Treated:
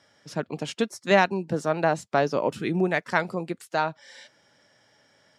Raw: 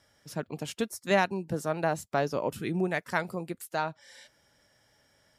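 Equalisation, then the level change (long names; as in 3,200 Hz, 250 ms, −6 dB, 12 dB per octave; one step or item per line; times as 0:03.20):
band-pass filter 140–6,400 Hz
+5.5 dB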